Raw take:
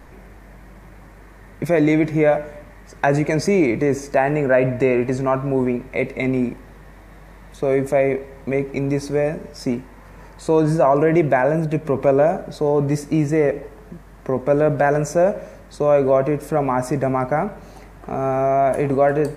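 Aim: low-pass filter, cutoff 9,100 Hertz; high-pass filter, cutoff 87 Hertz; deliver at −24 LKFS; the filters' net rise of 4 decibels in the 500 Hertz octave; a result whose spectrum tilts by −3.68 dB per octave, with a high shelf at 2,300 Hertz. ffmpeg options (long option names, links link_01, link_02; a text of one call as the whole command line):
ffmpeg -i in.wav -af "highpass=87,lowpass=9100,equalizer=frequency=500:width_type=o:gain=4.5,highshelf=frequency=2300:gain=7.5,volume=-8dB" out.wav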